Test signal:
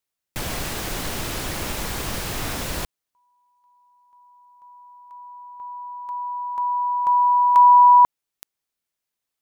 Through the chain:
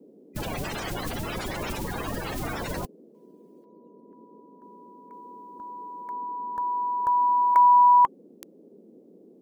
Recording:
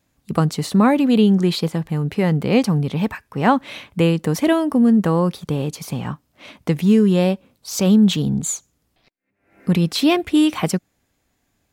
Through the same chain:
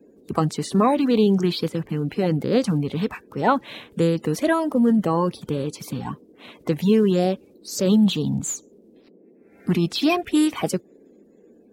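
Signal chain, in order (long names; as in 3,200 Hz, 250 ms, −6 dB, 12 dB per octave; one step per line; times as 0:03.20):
spectral magnitudes quantised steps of 30 dB
noise in a band 190–480 Hz −49 dBFS
level −3 dB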